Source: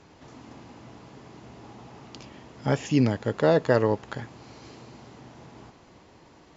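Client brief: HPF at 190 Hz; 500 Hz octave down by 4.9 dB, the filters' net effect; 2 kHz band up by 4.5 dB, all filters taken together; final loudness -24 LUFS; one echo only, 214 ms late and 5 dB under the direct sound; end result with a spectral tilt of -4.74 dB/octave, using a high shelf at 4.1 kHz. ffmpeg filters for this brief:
-af "highpass=190,equalizer=f=500:t=o:g=-6,equalizer=f=2000:t=o:g=7.5,highshelf=f=4100:g=-6.5,aecho=1:1:214:0.562,volume=1.41"

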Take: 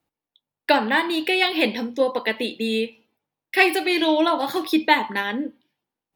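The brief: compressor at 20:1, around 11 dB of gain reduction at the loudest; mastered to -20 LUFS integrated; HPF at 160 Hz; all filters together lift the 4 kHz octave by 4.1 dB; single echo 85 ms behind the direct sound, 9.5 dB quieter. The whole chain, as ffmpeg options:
-af "highpass=160,equalizer=f=4000:t=o:g=5,acompressor=threshold=0.0891:ratio=20,aecho=1:1:85:0.335,volume=2"

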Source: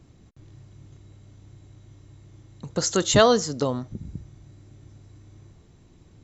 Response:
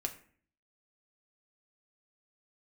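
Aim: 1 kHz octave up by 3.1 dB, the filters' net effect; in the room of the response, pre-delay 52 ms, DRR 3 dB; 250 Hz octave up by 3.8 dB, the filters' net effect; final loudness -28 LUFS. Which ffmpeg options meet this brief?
-filter_complex "[0:a]equalizer=f=250:t=o:g=4.5,equalizer=f=1000:t=o:g=4,asplit=2[s0][s1];[1:a]atrim=start_sample=2205,adelay=52[s2];[s1][s2]afir=irnorm=-1:irlink=0,volume=0.668[s3];[s0][s3]amix=inputs=2:normalize=0,volume=0.335"

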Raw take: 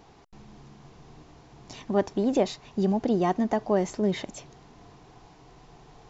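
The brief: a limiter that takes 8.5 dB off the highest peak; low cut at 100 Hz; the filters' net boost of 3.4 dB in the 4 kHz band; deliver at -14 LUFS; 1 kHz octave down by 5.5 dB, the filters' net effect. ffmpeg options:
-af "highpass=100,equalizer=f=1000:t=o:g=-8.5,equalizer=f=4000:t=o:g=4.5,volume=7.5,alimiter=limit=0.631:level=0:latency=1"

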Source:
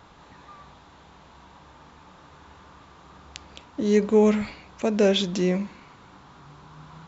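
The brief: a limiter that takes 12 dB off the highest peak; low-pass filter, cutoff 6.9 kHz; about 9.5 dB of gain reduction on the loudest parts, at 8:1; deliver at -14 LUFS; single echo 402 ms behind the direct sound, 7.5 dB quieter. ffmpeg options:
-af "lowpass=6900,acompressor=threshold=0.0631:ratio=8,alimiter=level_in=1.19:limit=0.0631:level=0:latency=1,volume=0.841,aecho=1:1:402:0.422,volume=11.9"

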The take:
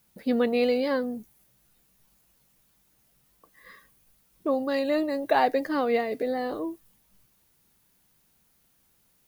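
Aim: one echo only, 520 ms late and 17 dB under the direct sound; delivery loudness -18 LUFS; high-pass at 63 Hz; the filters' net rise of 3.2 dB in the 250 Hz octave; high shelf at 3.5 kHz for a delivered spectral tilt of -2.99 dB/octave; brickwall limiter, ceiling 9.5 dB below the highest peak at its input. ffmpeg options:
-af "highpass=63,equalizer=f=250:t=o:g=3.5,highshelf=f=3500:g=3.5,alimiter=limit=0.112:level=0:latency=1,aecho=1:1:520:0.141,volume=3.16"

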